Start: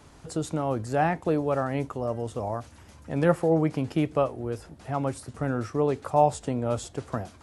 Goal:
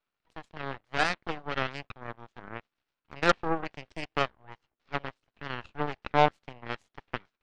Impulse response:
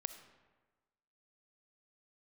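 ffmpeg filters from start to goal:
-filter_complex "[0:a]highpass=450,equalizer=frequency=580:width_type=q:width=4:gain=-7,equalizer=frequency=910:width_type=q:width=4:gain=-4,equalizer=frequency=1400:width_type=q:width=4:gain=7,equalizer=frequency=2600:width_type=q:width=4:gain=6,lowpass=frequency=3900:width=0.5412,lowpass=frequency=3900:width=1.3066,asplit=2[link_01][link_02];[1:a]atrim=start_sample=2205,asetrate=66150,aresample=44100[link_03];[link_02][link_03]afir=irnorm=-1:irlink=0,volume=-11dB[link_04];[link_01][link_04]amix=inputs=2:normalize=0,aeval=exprs='0.335*(cos(1*acos(clip(val(0)/0.335,-1,1)))-cos(1*PI/2))+0.00299*(cos(3*acos(clip(val(0)/0.335,-1,1)))-cos(3*PI/2))+0.0299*(cos(4*acos(clip(val(0)/0.335,-1,1)))-cos(4*PI/2))+0.0473*(cos(7*acos(clip(val(0)/0.335,-1,1)))-cos(7*PI/2))+0.015*(cos(8*acos(clip(val(0)/0.335,-1,1)))-cos(8*PI/2))':channel_layout=same,volume=1.5dB"

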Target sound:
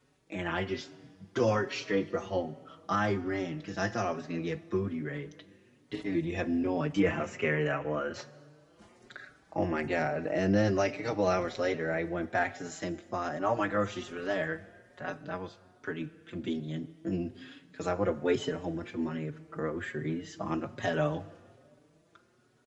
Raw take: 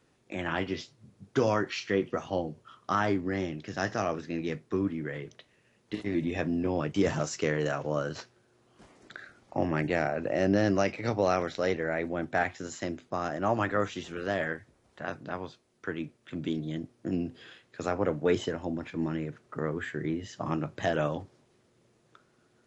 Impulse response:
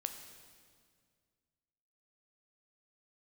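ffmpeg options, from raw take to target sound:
-filter_complex "[0:a]asettb=1/sr,asplit=3[link_01][link_02][link_03];[link_01]atrim=end=6.994[link_04];[link_02]atrim=start=6.99:end=8.14,asetpts=PTS-STARTPTS,afade=type=in:duration=0.004:curve=qsin,afade=type=out:start_time=1.146:duration=0.004:curve=qsin,highshelf=frequency=3300:width_type=q:width=3:gain=-10[link_05];[link_03]atrim=start=8.136[link_06];[link_04][link_05]acrossfade=duration=0.004:curve1=hsin:curve2=qsin[link_07];[link_07][link_06]acrossfade=duration=0.004:curve1=qsin:curve2=hsin,asplit=2[link_08][link_09];[1:a]atrim=start_sample=2205[link_10];[link_09][link_10]afir=irnorm=-1:irlink=0,volume=-5.5dB[link_11];[link_08][link_11]amix=inputs=2:normalize=0,asplit=2[link_12][link_13];[link_13]adelay=5,afreqshift=1.2[link_14];[link_12][link_14]amix=inputs=2:normalize=1,volume=-1.5dB"

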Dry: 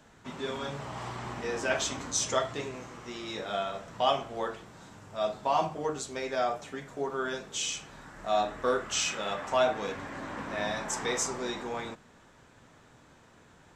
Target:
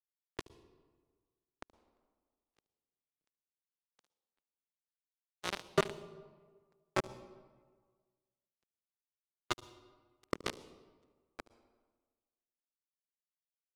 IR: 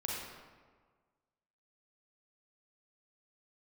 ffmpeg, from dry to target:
-filter_complex "[0:a]acompressor=threshold=-37dB:ratio=4,asplit=3[link_01][link_02][link_03];[link_01]bandpass=frequency=300:width_type=q:width=8,volume=0dB[link_04];[link_02]bandpass=frequency=870:width_type=q:width=8,volume=-6dB[link_05];[link_03]bandpass=frequency=2240:width_type=q:width=8,volume=-9dB[link_06];[link_04][link_05][link_06]amix=inputs=3:normalize=0,aecho=1:1:127:0.355,acrusher=bits=6:mix=0:aa=0.000001,agate=range=-42dB:threshold=-54dB:ratio=16:detection=peak,highpass=160,lowpass=5600,lowshelf=frequency=450:gain=6.5,tremolo=f=180:d=0.919,asetrate=58866,aresample=44100,atempo=0.749154,asplit=2[link_07][link_08];[link_08]equalizer=frequency=1700:width_type=o:width=1.2:gain=-12[link_09];[1:a]atrim=start_sample=2205,adelay=74[link_10];[link_09][link_10]afir=irnorm=-1:irlink=0,volume=-14.5dB[link_11];[link_07][link_11]amix=inputs=2:normalize=0,dynaudnorm=framelen=290:gausssize=17:maxgain=6dB,volume=13.5dB"

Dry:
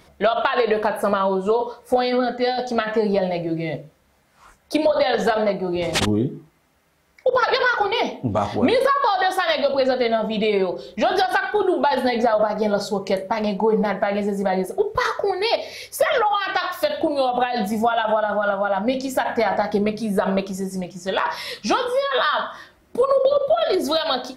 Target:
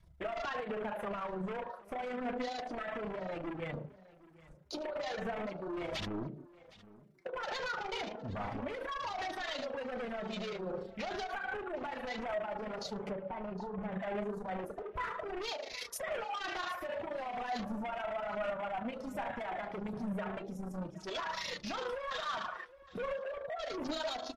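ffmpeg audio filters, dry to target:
ffmpeg -i in.wav -filter_complex "[0:a]acompressor=threshold=-22dB:ratio=16,aphaser=in_gain=1:out_gain=1:delay=3:decay=0.47:speed=1.3:type=sinusoidal,tremolo=f=27:d=0.71,asoftclip=type=hard:threshold=-30.5dB,bandreject=frequency=64.92:width_type=h:width=4,bandreject=frequency=129.84:width_type=h:width=4,bandreject=frequency=194.76:width_type=h:width=4,bandreject=frequency=259.68:width_type=h:width=4,bandreject=frequency=324.6:width_type=h:width=4,bandreject=frequency=389.52:width_type=h:width=4,bandreject=frequency=454.44:width_type=h:width=4,bandreject=frequency=519.36:width_type=h:width=4,bandreject=frequency=584.28:width_type=h:width=4,bandreject=frequency=649.2:width_type=h:width=4,bandreject=frequency=714.12:width_type=h:width=4,bandreject=frequency=779.04:width_type=h:width=4,bandreject=frequency=843.96:width_type=h:width=4,bandreject=frequency=908.88:width_type=h:width=4,bandreject=frequency=973.8:width_type=h:width=4,bandreject=frequency=1038.72:width_type=h:width=4,bandreject=frequency=1103.64:width_type=h:width=4,bandreject=frequency=1168.56:width_type=h:width=4,bandreject=frequency=1233.48:width_type=h:width=4,bandreject=frequency=1298.4:width_type=h:width=4,bandreject=frequency=1363.32:width_type=h:width=4,bandreject=frequency=1428.24:width_type=h:width=4,bandreject=frequency=1493.16:width_type=h:width=4,bandreject=frequency=1558.08:width_type=h:width=4,bandreject=frequency=1623:width_type=h:width=4,bandreject=frequency=1687.92:width_type=h:width=4,bandreject=frequency=1752.84:width_type=h:width=4,bandreject=frequency=1817.76:width_type=h:width=4,bandreject=frequency=1882.68:width_type=h:width=4,bandreject=frequency=1947.6:width_type=h:width=4,bandreject=frequency=2012.52:width_type=h:width=4,bandreject=frequency=2077.44:width_type=h:width=4,adynamicequalizer=threshold=0.00398:dfrequency=350:dqfactor=1.1:tfrequency=350:tqfactor=1.1:attack=5:release=100:ratio=0.375:range=1.5:mode=cutabove:tftype=bell,afwtdn=0.00631,asettb=1/sr,asplit=3[link_01][link_02][link_03];[link_01]atrim=end=13.094[link_04];[link_02]atrim=start=13.09:end=13.92,asetpts=PTS-STARTPTS,afade=type=in:duration=0.004:curve=qsin,afade=type=out:start_time=0.826:duration=0.004:curve=qsin,lowpass=frequency=1000:poles=1[link_05];[link_03]atrim=start=13.916[link_06];[link_04][link_05]acrossfade=duration=0.004:curve1=hsin:curve2=qsin[link_07];[link_07][link_06]acrossfade=duration=0.004:curve1=qsin:curve2=hsin,aecho=1:1:763|1526:0.1|0.016,flanger=delay=3:depth=2.6:regen=60:speed=0.33:shape=sinusoidal,volume=1dB" -ar 32000 -c:a libmp3lame -b:a 56k out.mp3

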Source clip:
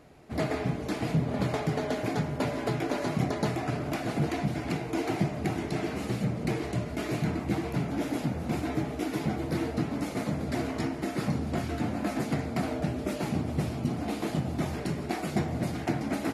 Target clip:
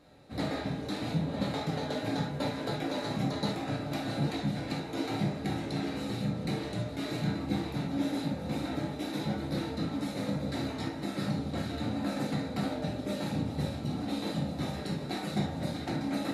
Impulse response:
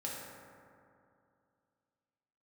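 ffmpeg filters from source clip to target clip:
-filter_complex "[0:a]equalizer=frequency=3900:width=6.8:gain=15[link_01];[1:a]atrim=start_sample=2205,atrim=end_sample=3528[link_02];[link_01][link_02]afir=irnorm=-1:irlink=0,volume=-2.5dB"

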